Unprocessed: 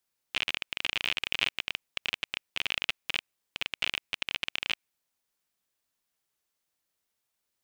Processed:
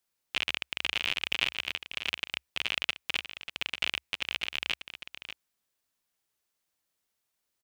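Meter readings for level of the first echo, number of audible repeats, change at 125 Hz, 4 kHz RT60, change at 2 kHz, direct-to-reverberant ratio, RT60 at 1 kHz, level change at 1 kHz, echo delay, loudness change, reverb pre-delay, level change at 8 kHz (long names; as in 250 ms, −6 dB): −11.5 dB, 1, +0.5 dB, no reverb audible, +0.5 dB, no reverb audible, no reverb audible, +0.5 dB, 591 ms, 0.0 dB, no reverb audible, +0.5 dB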